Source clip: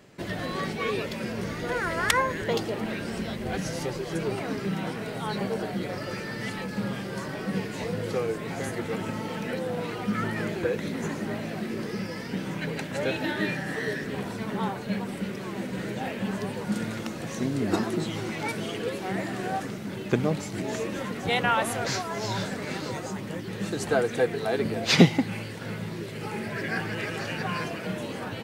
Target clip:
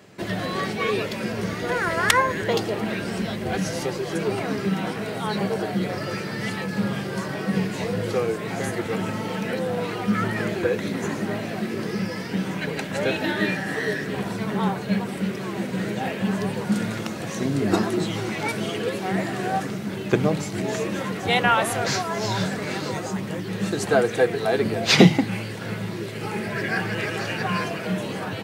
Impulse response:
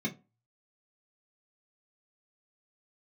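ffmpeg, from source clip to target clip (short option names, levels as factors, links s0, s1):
-filter_complex "[0:a]highpass=91,asplit=2[s0][s1];[1:a]atrim=start_sample=2205,asetrate=35721,aresample=44100[s2];[s1][s2]afir=irnorm=-1:irlink=0,volume=0.106[s3];[s0][s3]amix=inputs=2:normalize=0,volume=1.78"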